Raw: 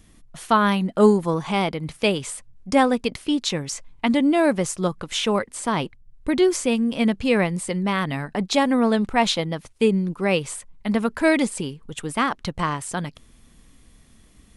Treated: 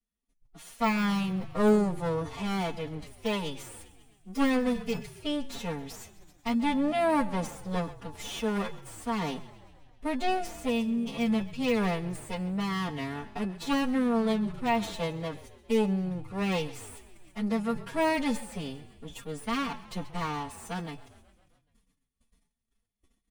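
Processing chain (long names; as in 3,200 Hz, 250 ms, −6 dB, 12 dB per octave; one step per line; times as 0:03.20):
lower of the sound and its delayed copy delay 4.3 ms
noise gate −49 dBFS, range −28 dB
de-essing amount 60%
notch filter 1,600 Hz, Q 25
phase-vocoder stretch with locked phases 1.6×
tuned comb filter 860 Hz, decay 0.34 s, mix 70%
echo with shifted repeats 133 ms, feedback 65%, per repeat −32 Hz, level −19 dB
level that may fall only so fast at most 130 dB per second
level +2.5 dB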